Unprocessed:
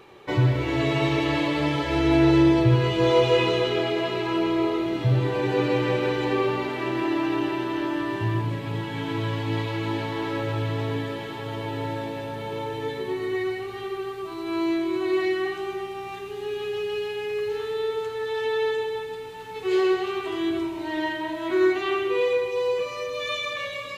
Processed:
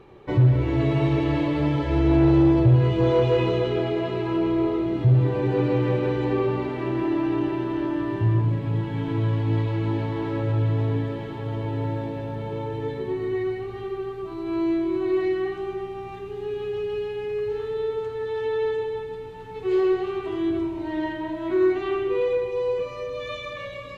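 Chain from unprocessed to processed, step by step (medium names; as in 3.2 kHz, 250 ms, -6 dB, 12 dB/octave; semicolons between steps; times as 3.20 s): tilt EQ -3 dB/octave; saturation -7 dBFS, distortion -19 dB; trim -3 dB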